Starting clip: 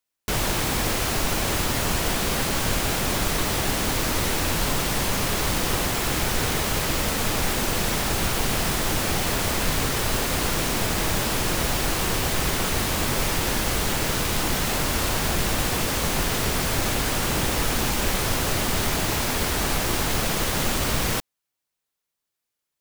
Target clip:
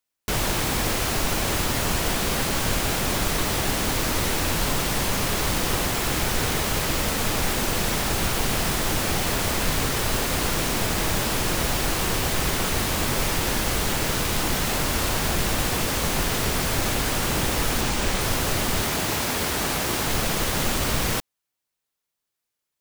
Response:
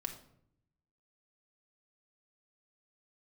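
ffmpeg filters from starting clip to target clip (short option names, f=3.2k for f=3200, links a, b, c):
-filter_complex "[0:a]asettb=1/sr,asplit=3[a][b][c];[a]atrim=end=17.814[d];[b]atrim=start=17.81:end=18.21,asetpts=PTS-STARTPTS,afade=t=in:d=0.004:c=qsin,afade=t=out:st=0.396:d=0.004:c=qsin,equalizer=f=13k:t=o:w=0.36:g=-9.5[e];[c]atrim=start=18.206[f];[d][e]acrossfade=d=0.004:c1=hsin:c2=qsin[g];[g][f]acrossfade=d=0.004:c1=qsin:c2=hsin,asettb=1/sr,asplit=3[h][i][j];[h]atrim=end=18.834[k];[i]atrim=start=18.83:end=20.07,asetpts=PTS-STARTPTS,afade=t=in:d=0.004:c=qsin,afade=t=out:st=1.236:d=0.004:c=qsin,highpass=f=100:p=1[l];[j]atrim=start=20.066[m];[k][l]acrossfade=d=0.004:c1=hsin:c2=qsin[n];[n][m]acrossfade=d=0.004:c1=qsin:c2=hsin"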